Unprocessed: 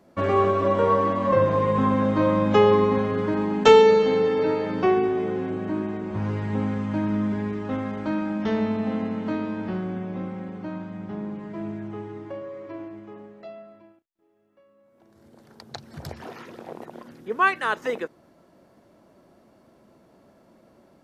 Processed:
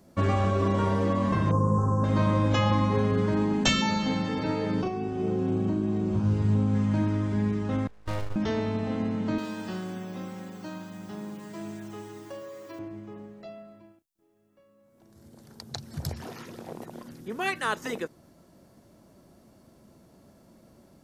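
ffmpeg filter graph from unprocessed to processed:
ffmpeg -i in.wav -filter_complex "[0:a]asettb=1/sr,asplit=3[link_01][link_02][link_03];[link_01]atrim=end=1.514[link_04];[link_02]atrim=start=1.51:end=2.04,asetpts=PTS-STARTPTS,afade=type=in:duration=0.004:curve=qsin,afade=type=out:start_time=0.526:duration=0.004:curve=qsin,asuperstop=centerf=2800:order=8:qfactor=0.61,equalizer=frequency=610:width_type=o:width=0.44:gain=-7[link_05];[link_03]atrim=start=2.036[link_06];[link_04][link_05]acrossfade=duration=0.004:curve1=hsin:curve2=qsin[link_07];[link_07][link_06]acrossfade=duration=0.004:curve1=qsin:curve2=hsin,asettb=1/sr,asplit=3[link_08][link_09][link_10];[link_08]atrim=end=4.814[link_11];[link_09]atrim=start=4.81:end=6.75,asetpts=PTS-STARTPTS,afade=type=in:duration=0.004:curve=qsin,afade=type=out:start_time=1.936:duration=0.004:curve=qsin,equalizer=frequency=1900:width_type=o:width=0.39:gain=-9,acompressor=threshold=-26dB:ratio=5:attack=3.2:release=140:knee=1:detection=peak,asplit=2[link_12][link_13];[link_13]adelay=38,volume=-4dB[link_14];[link_12][link_14]amix=inputs=2:normalize=0,atrim=end_sample=85554[link_15];[link_10]atrim=start=6.746[link_16];[link_11][link_15]acrossfade=duration=0.004:curve1=hsin:curve2=qsin[link_17];[link_17][link_16]acrossfade=duration=0.004:curve1=qsin:curve2=hsin,asettb=1/sr,asplit=3[link_18][link_19][link_20];[link_18]atrim=end=7.874[link_21];[link_19]atrim=start=7.87:end=8.36,asetpts=PTS-STARTPTS,afade=type=in:duration=0.004:curve=qsin,afade=type=out:start_time=0.486:duration=0.004:curve=qsin,agate=range=-23dB:threshold=-27dB:ratio=16:release=100:detection=peak,highpass=frequency=150:poles=1,aeval=exprs='abs(val(0))':channel_layout=same[link_22];[link_20]atrim=start=8.356[link_23];[link_21][link_22]acrossfade=duration=0.004:curve1=hsin:curve2=qsin[link_24];[link_24][link_23]acrossfade=duration=0.004:curve1=qsin:curve2=hsin,asettb=1/sr,asplit=3[link_25][link_26][link_27];[link_25]atrim=end=9.384[link_28];[link_26]atrim=start=9.38:end=12.79,asetpts=PTS-STARTPTS,afade=type=in:duration=0.004:curve=qsin,afade=type=out:start_time=3.406:duration=0.004:curve=qsin,aemphasis=mode=production:type=riaa,bandreject=frequency=2200:width=11[link_29];[link_27]atrim=start=12.786[link_30];[link_28][link_29]acrossfade=duration=0.004:curve1=hsin:curve2=qsin[link_31];[link_31][link_30]acrossfade=duration=0.004:curve1=qsin:curve2=hsin,lowshelf=frequency=120:gain=4,afftfilt=real='re*lt(hypot(re,im),0.631)':imag='im*lt(hypot(re,im),0.631)':win_size=1024:overlap=0.75,bass=frequency=250:gain=7,treble=frequency=4000:gain=11,volume=-3.5dB" out.wav

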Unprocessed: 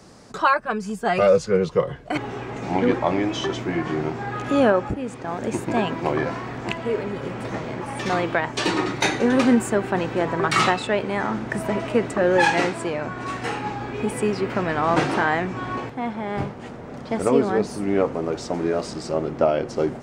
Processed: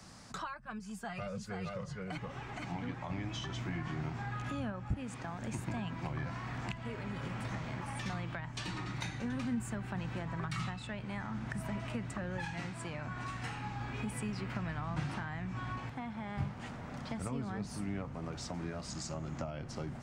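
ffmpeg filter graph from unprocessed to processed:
ffmpeg -i in.wav -filter_complex "[0:a]asettb=1/sr,asplit=3[link_01][link_02][link_03];[link_01]atrim=end=0.794[link_04];[link_02]atrim=start=0.79:end=3.1,asetpts=PTS-STARTPTS,afade=type=in:duration=0.004:curve=qsin,afade=type=out:start_time=2.306:duration=0.004:curve=qsin,aecho=1:1:469:0.596,atrim=end_sample=101871,flanger=delay=2.2:depth=4.9:regen=61:speed=1.2:shape=sinusoidal[link_05];[link_03]atrim=start=3.096[link_06];[link_04][link_05]acrossfade=duration=0.004:curve1=hsin:curve2=qsin[link_07];[link_07][link_06]acrossfade=duration=0.004:curve1=qsin:curve2=hsin,asettb=1/sr,asplit=3[link_08][link_09][link_10];[link_08]atrim=end=18.904[link_11];[link_09]atrim=start=18.9:end=19.5,asetpts=PTS-STARTPTS,afade=type=in:duration=0.004:curve=qsin,afade=type=out:start_time=0.596:duration=0.004:curve=qsin,equalizer=frequency=6800:width=4.2:gain=12.5,bandreject=frequency=440:width=6.7[link_12];[link_10]atrim=start=19.496[link_13];[link_11][link_12]acrossfade=duration=0.004:curve1=hsin:curve2=qsin[link_14];[link_14][link_13]acrossfade=duration=0.004:curve1=qsin:curve2=hsin,equalizer=frequency=420:width_type=o:width=1.2:gain=-13,acrossover=split=170[link_15][link_16];[link_16]acompressor=threshold=-37dB:ratio=10[link_17];[link_15][link_17]amix=inputs=2:normalize=0,volume=-3dB" out.wav

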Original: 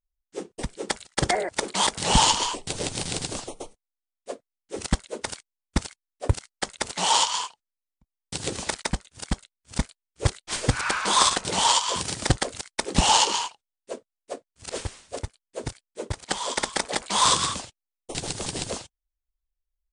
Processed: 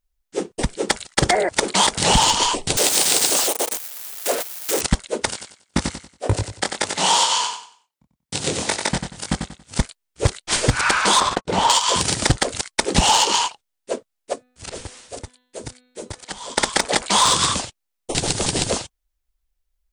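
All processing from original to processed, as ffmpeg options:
ffmpeg -i in.wav -filter_complex "[0:a]asettb=1/sr,asplit=3[link_01][link_02][link_03];[link_01]atrim=end=2.774[link_04];[link_02]atrim=start=2.77:end=4.81,asetpts=PTS-STARTPTS,afade=type=in:duration=0.004:curve=qsin,afade=type=out:start_time=2.036:duration=0.004:curve=qsin,aeval=exprs='val(0)+0.5*0.0376*sgn(val(0))':channel_layout=same,highpass=410,highshelf=frequency=7700:gain=8.5[link_05];[link_03]atrim=start=4.806[link_06];[link_04][link_05]acrossfade=duration=0.004:curve1=hsin:curve2=qsin[link_07];[link_07][link_06]acrossfade=duration=0.004:curve1=qsin:curve2=hsin,asettb=1/sr,asplit=3[link_08][link_09][link_10];[link_08]atrim=end=5.314[link_11];[link_09]atrim=start=5.31:end=9.8,asetpts=PTS-STARTPTS,afade=type=in:duration=0.004:curve=qsin,afade=type=out:start_time=4.486:duration=0.004:curve=qsin,highpass=91,flanger=delay=19:depth=6.9:speed=2,aecho=1:1:93|186|279|372:0.447|0.13|0.0376|0.0109,atrim=end_sample=198009[link_12];[link_10]atrim=start=9.796[link_13];[link_11][link_12]acrossfade=duration=0.004:curve1=hsin:curve2=qsin[link_14];[link_14][link_13]acrossfade=duration=0.004:curve1=qsin:curve2=hsin,asettb=1/sr,asplit=3[link_15][link_16][link_17];[link_15]atrim=end=11.204[link_18];[link_16]atrim=start=11.2:end=11.7,asetpts=PTS-STARTPTS,afade=type=in:duration=0.004:curve=qsin,afade=type=out:start_time=0.496:duration=0.004:curve=qsin,lowpass=frequency=1200:poles=1,agate=range=-59dB:threshold=-33dB:ratio=16:release=100:detection=peak[link_19];[link_17]atrim=start=11.696[link_20];[link_18][link_19]acrossfade=duration=0.004:curve1=hsin:curve2=qsin[link_21];[link_21][link_20]acrossfade=duration=0.004:curve1=qsin:curve2=hsin,asettb=1/sr,asplit=3[link_22][link_23][link_24];[link_22]atrim=end=14.334[link_25];[link_23]atrim=start=14.33:end=16.58,asetpts=PTS-STARTPTS,afade=type=in:duration=0.004:curve=qsin,afade=type=out:start_time=2.246:duration=0.004:curve=qsin,bandreject=frequency=249.7:width_type=h:width=4,bandreject=frequency=499.4:width_type=h:width=4,bandreject=frequency=749.1:width_type=h:width=4,bandreject=frequency=998.8:width_type=h:width=4,bandreject=frequency=1248.5:width_type=h:width=4,bandreject=frequency=1498.2:width_type=h:width=4,bandreject=frequency=1747.9:width_type=h:width=4,bandreject=frequency=1997.6:width_type=h:width=4,bandreject=frequency=2247.3:width_type=h:width=4,bandreject=frequency=2497:width_type=h:width=4,bandreject=frequency=2746.7:width_type=h:width=4,bandreject=frequency=2996.4:width_type=h:width=4,bandreject=frequency=3246.1:width_type=h:width=4,bandreject=frequency=3495.8:width_type=h:width=4,bandreject=frequency=3745.5:width_type=h:width=4,bandreject=frequency=3995.2:width_type=h:width=4,bandreject=frequency=4244.9:width_type=h:width=4,acrossover=split=200|4600[link_26][link_27][link_28];[link_26]acompressor=threshold=-48dB:ratio=4[link_29];[link_27]acompressor=threshold=-45dB:ratio=4[link_30];[link_28]acompressor=threshold=-49dB:ratio=4[link_31];[link_29][link_30][link_31]amix=inputs=3:normalize=0[link_32];[link_24]atrim=start=16.576[link_33];[link_25][link_32]acrossfade=duration=0.004:curve1=hsin:curve2=qsin[link_34];[link_34][link_33]acrossfade=duration=0.004:curve1=qsin:curve2=hsin,acontrast=74,bandreject=frequency=1100:width=30,acompressor=threshold=-16dB:ratio=4,volume=3dB" out.wav

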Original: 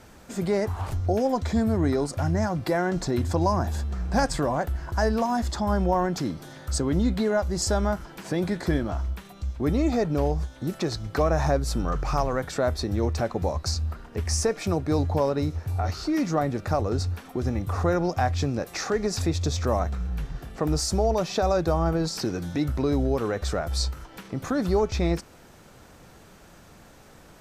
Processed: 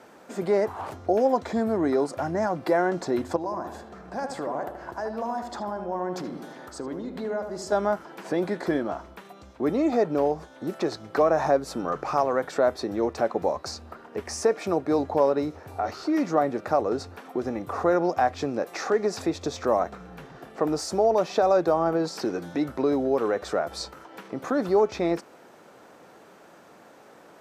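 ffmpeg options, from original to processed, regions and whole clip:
ffmpeg -i in.wav -filter_complex "[0:a]asettb=1/sr,asplit=3[link_01][link_02][link_03];[link_01]atrim=end=3.364[link_04];[link_02]atrim=start=3.36:end=7.72,asetpts=PTS-STARTPTS,afade=type=in:duration=0.004:curve=qsin,afade=type=out:start_time=4.356:duration=0.004:curve=qsin,acompressor=threshold=-30dB:ratio=4:attack=3.2:release=140:knee=1:detection=peak,asplit=2[link_05][link_06];[link_06]adelay=77,lowpass=frequency=1800:poles=1,volume=-6dB,asplit=2[link_07][link_08];[link_08]adelay=77,lowpass=frequency=1800:poles=1,volume=0.54,asplit=2[link_09][link_10];[link_10]adelay=77,lowpass=frequency=1800:poles=1,volume=0.54,asplit=2[link_11][link_12];[link_12]adelay=77,lowpass=frequency=1800:poles=1,volume=0.54,asplit=2[link_13][link_14];[link_14]adelay=77,lowpass=frequency=1800:poles=1,volume=0.54,asplit=2[link_15][link_16];[link_16]adelay=77,lowpass=frequency=1800:poles=1,volume=0.54,asplit=2[link_17][link_18];[link_18]adelay=77,lowpass=frequency=1800:poles=1,volume=0.54[link_19];[link_05][link_07][link_09][link_11][link_13][link_15][link_17][link_19]amix=inputs=8:normalize=0,atrim=end_sample=192276[link_20];[link_03]atrim=start=7.716[link_21];[link_04][link_20]acrossfade=duration=0.004:curve1=hsin:curve2=qsin[link_22];[link_22][link_21]acrossfade=duration=0.004:curve1=qsin:curve2=hsin,highpass=340,highshelf=frequency=2100:gain=-12,volume=5dB" out.wav

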